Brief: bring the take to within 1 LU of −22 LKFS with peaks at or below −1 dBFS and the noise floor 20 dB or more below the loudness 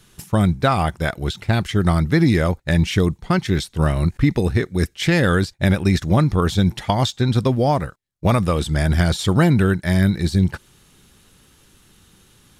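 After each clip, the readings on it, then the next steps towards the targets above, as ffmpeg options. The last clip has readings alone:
integrated loudness −19.0 LKFS; sample peak −4.5 dBFS; target loudness −22.0 LKFS
→ -af "volume=-3dB"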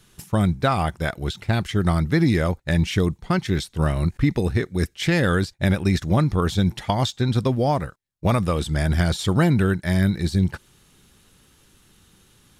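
integrated loudness −22.0 LKFS; sample peak −7.5 dBFS; background noise floor −58 dBFS

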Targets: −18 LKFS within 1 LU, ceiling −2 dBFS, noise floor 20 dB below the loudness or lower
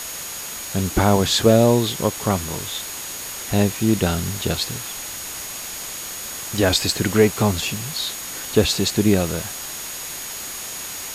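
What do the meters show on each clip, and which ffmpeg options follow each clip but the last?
interfering tone 6,700 Hz; level of the tone −35 dBFS; background noise floor −32 dBFS; target noise floor −42 dBFS; integrated loudness −21.5 LKFS; sample peak −3.0 dBFS; target loudness −18.0 LKFS
→ -af "bandreject=frequency=6700:width=30"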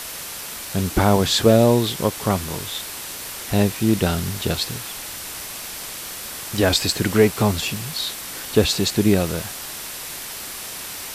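interfering tone none found; background noise floor −33 dBFS; target noise floor −42 dBFS
→ -af "afftdn=noise_reduction=9:noise_floor=-33"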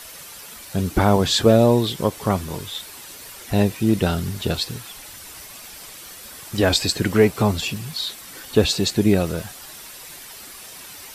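background noise floor −40 dBFS; target noise floor −41 dBFS
→ -af "afftdn=noise_reduction=6:noise_floor=-40"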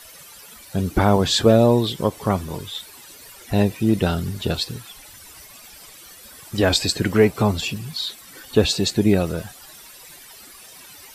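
background noise floor −44 dBFS; integrated loudness −20.5 LKFS; sample peak −3.5 dBFS; target loudness −18.0 LKFS
→ -af "volume=2.5dB,alimiter=limit=-2dB:level=0:latency=1"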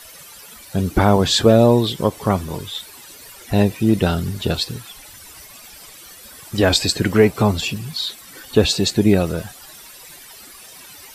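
integrated loudness −18.0 LKFS; sample peak −2.0 dBFS; background noise floor −42 dBFS

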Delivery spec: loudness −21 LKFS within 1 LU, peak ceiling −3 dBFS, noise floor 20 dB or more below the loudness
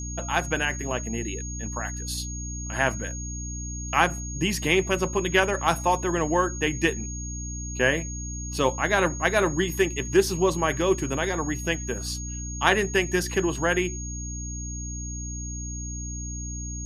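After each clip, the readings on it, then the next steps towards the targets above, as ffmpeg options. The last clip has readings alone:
mains hum 60 Hz; hum harmonics up to 300 Hz; level of the hum −32 dBFS; interfering tone 6,600 Hz; level of the tone −36 dBFS; integrated loudness −26.0 LKFS; sample peak −3.5 dBFS; target loudness −21.0 LKFS
→ -af "bandreject=frequency=60:width_type=h:width=6,bandreject=frequency=120:width_type=h:width=6,bandreject=frequency=180:width_type=h:width=6,bandreject=frequency=240:width_type=h:width=6,bandreject=frequency=300:width_type=h:width=6"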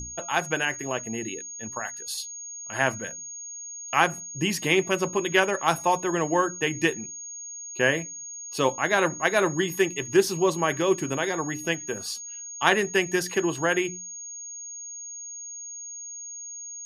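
mains hum none found; interfering tone 6,600 Hz; level of the tone −36 dBFS
→ -af "bandreject=frequency=6600:width=30"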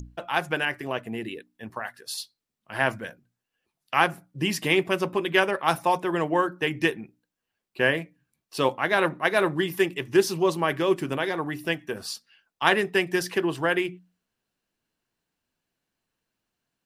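interfering tone none found; integrated loudness −25.5 LKFS; sample peak −4.0 dBFS; target loudness −21.0 LKFS
→ -af "volume=4.5dB,alimiter=limit=-3dB:level=0:latency=1"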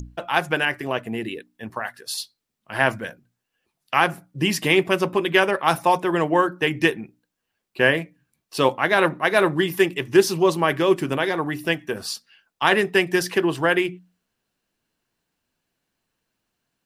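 integrated loudness −21.5 LKFS; sample peak −3.0 dBFS; background noise floor −81 dBFS

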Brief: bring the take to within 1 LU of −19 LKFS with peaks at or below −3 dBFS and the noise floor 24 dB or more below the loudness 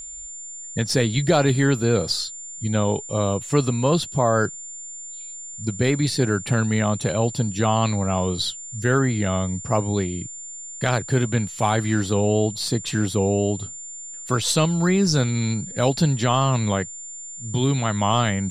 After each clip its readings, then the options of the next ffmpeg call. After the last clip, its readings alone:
interfering tone 7,200 Hz; level of the tone −34 dBFS; integrated loudness −22.0 LKFS; sample peak −6.0 dBFS; target loudness −19.0 LKFS
→ -af "bandreject=frequency=7200:width=30"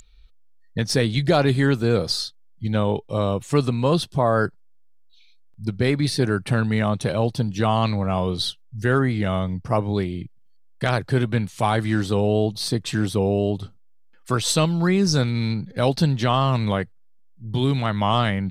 interfering tone none found; integrated loudness −22.5 LKFS; sample peak −5.5 dBFS; target loudness −19.0 LKFS
→ -af "volume=3.5dB,alimiter=limit=-3dB:level=0:latency=1"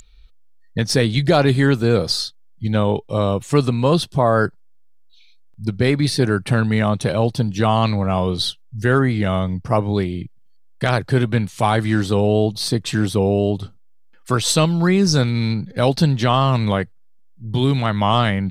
integrated loudness −19.0 LKFS; sample peak −3.0 dBFS; background noise floor −47 dBFS

